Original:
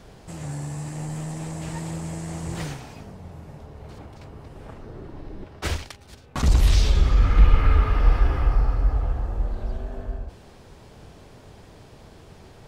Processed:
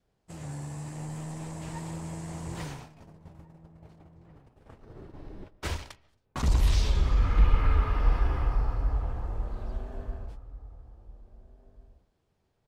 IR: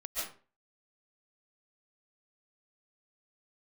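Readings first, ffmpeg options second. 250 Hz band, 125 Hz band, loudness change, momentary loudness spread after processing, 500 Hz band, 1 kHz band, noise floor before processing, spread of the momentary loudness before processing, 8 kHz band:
-6.0 dB, -6.0 dB, -6.0 dB, 22 LU, -6.0 dB, -4.5 dB, -48 dBFS, 23 LU, -6.5 dB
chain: -filter_complex "[0:a]agate=range=-22dB:threshold=-38dB:ratio=16:detection=peak,asplit=2[a][b];[b]adelay=1691,volume=-17dB,highshelf=f=4k:g=-38[c];[a][c]amix=inputs=2:normalize=0,asplit=2[d][e];[1:a]atrim=start_sample=2205,lowpass=3.6k[f];[e][f]afir=irnorm=-1:irlink=0,volume=-21.5dB[g];[d][g]amix=inputs=2:normalize=0,adynamicequalizer=threshold=0.00251:dfrequency=980:dqfactor=6.2:tfrequency=980:tqfactor=6.2:attack=5:release=100:ratio=0.375:range=3:mode=boostabove:tftype=bell,volume=-6.5dB"

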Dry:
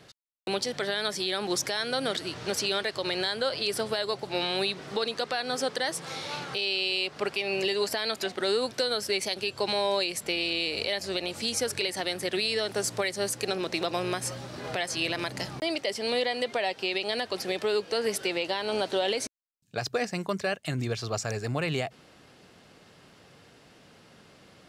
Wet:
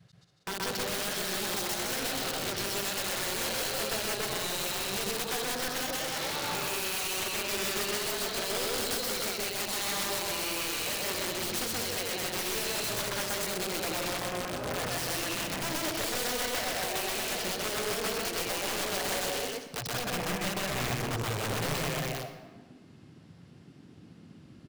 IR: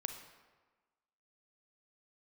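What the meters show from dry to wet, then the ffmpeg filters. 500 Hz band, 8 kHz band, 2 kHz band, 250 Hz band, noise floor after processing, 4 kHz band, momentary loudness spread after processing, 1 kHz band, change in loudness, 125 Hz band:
-6.0 dB, +4.0 dB, -1.5 dB, -3.0 dB, -54 dBFS, -3.0 dB, 2 LU, -1.0 dB, -1.5 dB, -1.0 dB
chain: -filter_complex "[0:a]aecho=1:1:189.5|277:0.447|0.447,adynamicequalizer=threshold=0.0126:dfrequency=380:dqfactor=1.7:tfrequency=380:tqfactor=1.7:attack=5:release=100:ratio=0.375:range=2:mode=cutabove:tftype=bell,acompressor=threshold=-37dB:ratio=2.5,afwtdn=0.00631,aeval=exprs='(mod(39.8*val(0)+1,2)-1)/39.8':c=same,asplit=2[a][b];[1:a]atrim=start_sample=2205,adelay=127[c];[b][c]afir=irnorm=-1:irlink=0,volume=1.5dB[d];[a][d]amix=inputs=2:normalize=0,volume=3.5dB"

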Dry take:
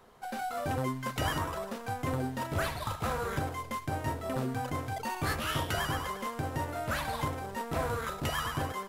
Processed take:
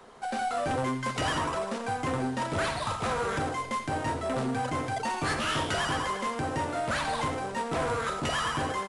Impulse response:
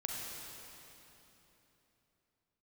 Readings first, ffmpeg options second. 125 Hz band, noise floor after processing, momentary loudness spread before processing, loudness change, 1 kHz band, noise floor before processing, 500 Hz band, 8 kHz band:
-0.5 dB, -37 dBFS, 4 LU, +4.0 dB, +5.0 dB, -44 dBFS, +4.5 dB, +4.0 dB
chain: -filter_complex "[0:a]acrossover=split=160[a][b];[b]acontrast=82[c];[a][c]amix=inputs=2:normalize=0,asoftclip=type=tanh:threshold=-24dB,aecho=1:1:86:0.282,aresample=22050,aresample=44100"

